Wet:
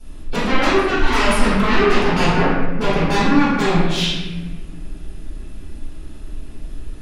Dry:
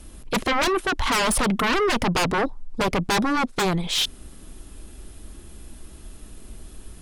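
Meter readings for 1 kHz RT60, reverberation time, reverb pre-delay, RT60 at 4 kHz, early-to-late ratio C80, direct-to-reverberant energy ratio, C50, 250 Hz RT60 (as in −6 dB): 1.1 s, 1.2 s, 4 ms, 0.90 s, 1.5 dB, −15.0 dB, −2.5 dB, 2.0 s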